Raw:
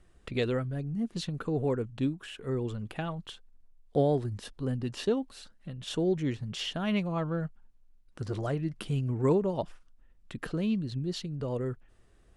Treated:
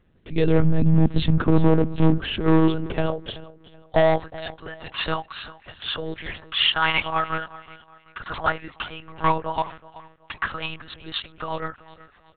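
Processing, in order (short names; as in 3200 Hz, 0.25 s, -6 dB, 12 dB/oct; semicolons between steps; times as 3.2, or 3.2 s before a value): AGC gain up to 12 dB; high-pass sweep 97 Hz -> 1100 Hz, 1.33–4.4; rotary speaker horn 0.7 Hz, later 8 Hz, at 9.02; hard clip -16.5 dBFS, distortion -10 dB; on a send: feedback echo 0.374 s, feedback 35%, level -18.5 dB; on the sum: monotone LPC vocoder at 8 kHz 160 Hz; gain +4.5 dB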